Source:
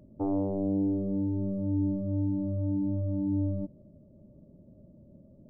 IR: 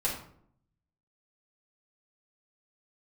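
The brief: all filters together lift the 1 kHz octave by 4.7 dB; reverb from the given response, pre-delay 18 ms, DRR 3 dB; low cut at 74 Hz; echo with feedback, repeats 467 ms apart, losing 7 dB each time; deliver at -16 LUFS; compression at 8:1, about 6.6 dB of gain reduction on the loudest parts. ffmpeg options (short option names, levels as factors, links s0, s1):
-filter_complex "[0:a]highpass=74,equalizer=f=1000:t=o:g=6.5,acompressor=threshold=0.0282:ratio=8,aecho=1:1:467|934|1401|1868|2335:0.447|0.201|0.0905|0.0407|0.0183,asplit=2[s0][s1];[1:a]atrim=start_sample=2205,adelay=18[s2];[s1][s2]afir=irnorm=-1:irlink=0,volume=0.316[s3];[s0][s3]amix=inputs=2:normalize=0,volume=7.5"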